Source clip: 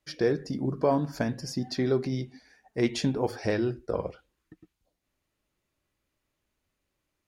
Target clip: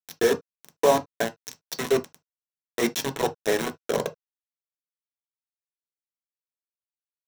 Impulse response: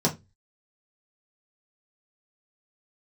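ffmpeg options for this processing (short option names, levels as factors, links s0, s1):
-filter_complex "[0:a]highpass=520,acrusher=bits=4:mix=0:aa=0.000001,asplit=2[s0][s1];[1:a]atrim=start_sample=2205,atrim=end_sample=3528[s2];[s1][s2]afir=irnorm=-1:irlink=0,volume=0.224[s3];[s0][s3]amix=inputs=2:normalize=0,volume=1.19"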